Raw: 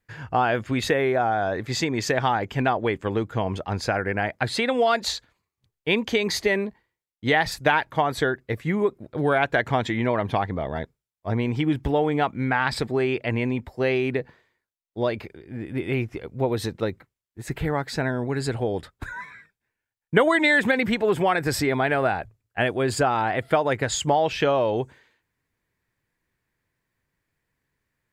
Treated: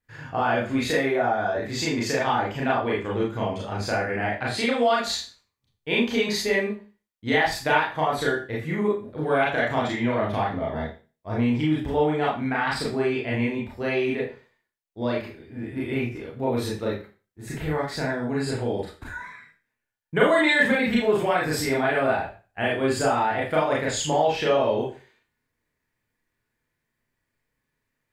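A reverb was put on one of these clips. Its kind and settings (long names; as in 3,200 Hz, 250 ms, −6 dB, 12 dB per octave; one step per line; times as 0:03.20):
four-comb reverb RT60 0.35 s, combs from 26 ms, DRR −5.5 dB
level −7 dB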